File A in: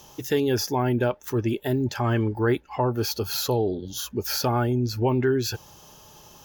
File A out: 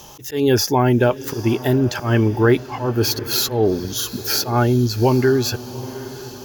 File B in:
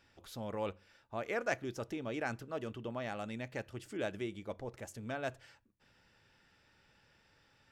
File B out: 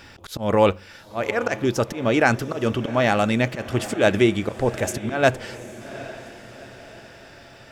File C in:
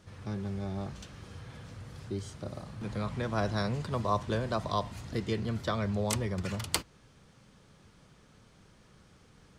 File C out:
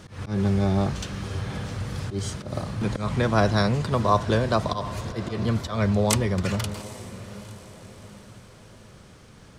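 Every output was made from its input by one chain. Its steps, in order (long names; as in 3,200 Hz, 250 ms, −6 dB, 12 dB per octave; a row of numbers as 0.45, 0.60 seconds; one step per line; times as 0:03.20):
speech leveller within 4 dB 2 s
volume swells 143 ms
feedback delay with all-pass diffusion 794 ms, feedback 47%, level −15.5 dB
normalise the peak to −3 dBFS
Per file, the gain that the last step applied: +7.5, +20.5, +10.0 decibels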